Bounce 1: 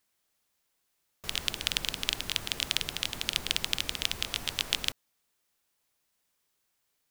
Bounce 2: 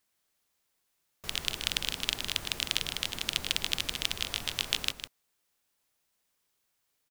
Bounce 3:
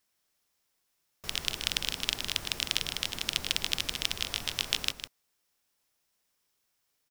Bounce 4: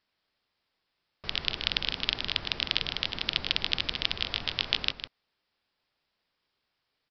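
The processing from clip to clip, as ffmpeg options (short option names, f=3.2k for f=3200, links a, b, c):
-af "aecho=1:1:155:0.355,volume=-1dB"
-af "equalizer=f=5.4k:w=7.9:g=5"
-af "aresample=11025,aresample=44100,volume=2.5dB"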